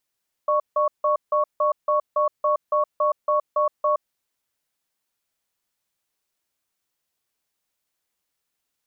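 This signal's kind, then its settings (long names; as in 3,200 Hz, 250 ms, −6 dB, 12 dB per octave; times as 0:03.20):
tone pair in a cadence 600 Hz, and 1,110 Hz, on 0.12 s, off 0.16 s, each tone −20 dBFS 3.55 s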